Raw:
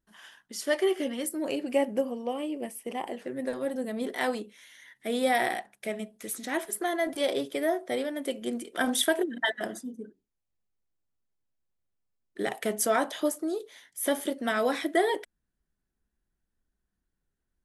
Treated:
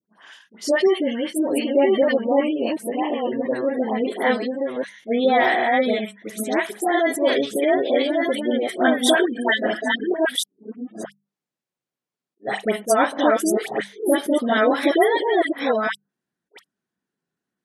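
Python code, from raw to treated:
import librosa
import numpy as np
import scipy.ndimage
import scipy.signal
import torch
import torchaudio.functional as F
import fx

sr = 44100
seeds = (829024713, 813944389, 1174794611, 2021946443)

y = fx.reverse_delay(x, sr, ms=690, wet_db=-2.5)
y = fx.leveller(y, sr, passes=1)
y = scipy.signal.sosfilt(scipy.signal.butter(4, 140.0, 'highpass', fs=sr, output='sos'), y)
y = fx.high_shelf(y, sr, hz=9300.0, db=-10.0)
y = fx.hum_notches(y, sr, base_hz=50, count=4)
y = fx.dispersion(y, sr, late='highs', ms=90.0, hz=1300.0)
y = fx.spec_gate(y, sr, threshold_db=-30, keep='strong')
y = fx.attack_slew(y, sr, db_per_s=500.0)
y = y * 10.0 ** (5.0 / 20.0)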